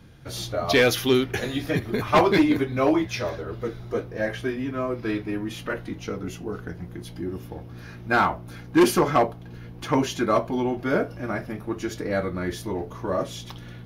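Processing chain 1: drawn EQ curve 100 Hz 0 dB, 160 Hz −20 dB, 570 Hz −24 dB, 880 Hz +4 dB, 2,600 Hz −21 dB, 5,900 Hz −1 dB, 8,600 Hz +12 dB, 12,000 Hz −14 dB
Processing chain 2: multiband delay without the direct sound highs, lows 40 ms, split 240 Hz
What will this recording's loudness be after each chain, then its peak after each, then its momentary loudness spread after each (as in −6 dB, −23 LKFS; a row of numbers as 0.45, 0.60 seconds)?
−32.5, −26.0 LKFS; −9.5, −5.5 dBFS; 18, 17 LU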